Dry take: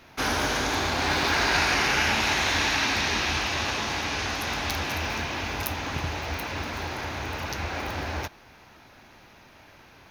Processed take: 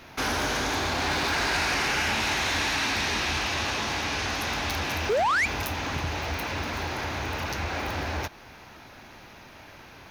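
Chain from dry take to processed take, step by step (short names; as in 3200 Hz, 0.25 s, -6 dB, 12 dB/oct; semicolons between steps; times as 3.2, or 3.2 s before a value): in parallel at 0 dB: compressor, threshold -35 dBFS, peak gain reduction 14.5 dB; on the sum: painted sound rise, 5.09–5.46, 380–2500 Hz -17 dBFS; soft clip -19 dBFS, distortion -13 dB; gain -1.5 dB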